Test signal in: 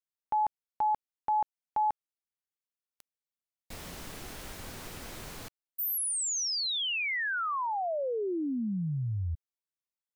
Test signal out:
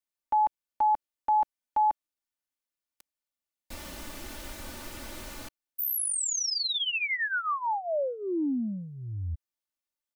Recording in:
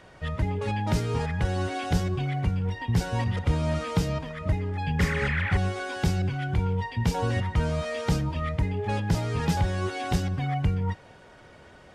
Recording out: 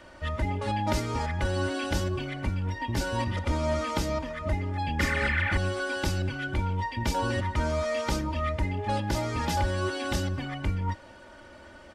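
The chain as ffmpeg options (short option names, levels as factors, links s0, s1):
-filter_complex "[0:a]acrossover=split=460|3500[s0][s1][s2];[s0]asoftclip=type=tanh:threshold=0.0708[s3];[s3][s1][s2]amix=inputs=3:normalize=0,aecho=1:1:3.4:0.7"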